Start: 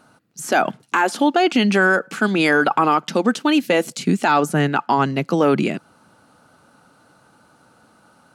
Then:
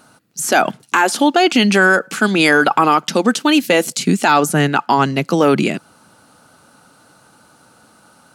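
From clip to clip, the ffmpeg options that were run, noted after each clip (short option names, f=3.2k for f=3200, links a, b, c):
-af "highshelf=f=3.6k:g=8,volume=3dB"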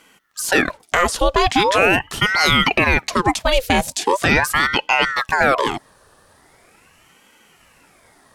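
-af "aeval=exprs='val(0)*sin(2*PI*1000*n/s+1000*0.75/0.41*sin(2*PI*0.41*n/s))':c=same"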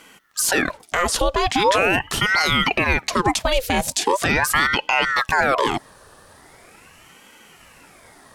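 -af "alimiter=limit=-12dB:level=0:latency=1:release=117,volume=4.5dB"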